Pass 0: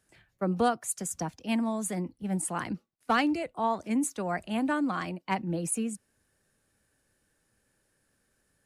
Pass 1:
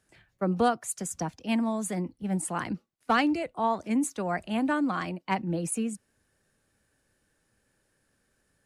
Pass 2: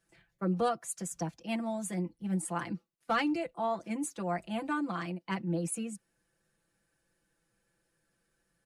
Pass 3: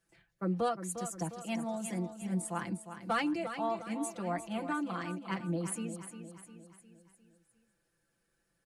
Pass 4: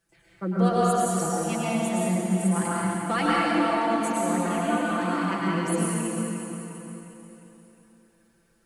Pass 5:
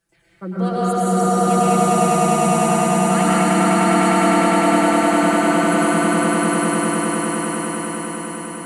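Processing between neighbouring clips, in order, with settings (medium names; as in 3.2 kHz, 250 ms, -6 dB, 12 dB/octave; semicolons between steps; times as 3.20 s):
treble shelf 11 kHz -7.5 dB; trim +1.5 dB
comb 5.9 ms, depth 91%; trim -7.5 dB
feedback delay 354 ms, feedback 50%, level -10 dB; trim -2 dB
plate-style reverb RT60 3.1 s, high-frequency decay 0.75×, pre-delay 90 ms, DRR -7 dB; trim +3.5 dB
echo with a slow build-up 101 ms, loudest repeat 8, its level -3.5 dB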